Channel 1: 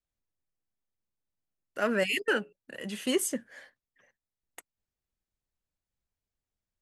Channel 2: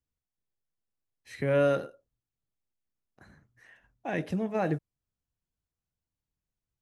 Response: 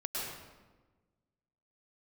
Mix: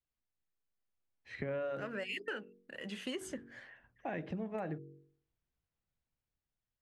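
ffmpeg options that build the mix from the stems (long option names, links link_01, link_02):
-filter_complex "[0:a]aemphasis=mode=production:type=75fm,volume=-4.5dB[link_01];[1:a]dynaudnorm=framelen=200:gausssize=9:maxgain=9dB,volume=-8.5dB[link_02];[link_01][link_02]amix=inputs=2:normalize=0,lowpass=2800,bandreject=frequency=47.18:width_type=h:width=4,bandreject=frequency=94.36:width_type=h:width=4,bandreject=frequency=141.54:width_type=h:width=4,bandreject=frequency=188.72:width_type=h:width=4,bandreject=frequency=235.9:width_type=h:width=4,bandreject=frequency=283.08:width_type=h:width=4,bandreject=frequency=330.26:width_type=h:width=4,bandreject=frequency=377.44:width_type=h:width=4,bandreject=frequency=424.62:width_type=h:width=4,bandreject=frequency=471.8:width_type=h:width=4,acompressor=threshold=-37dB:ratio=5"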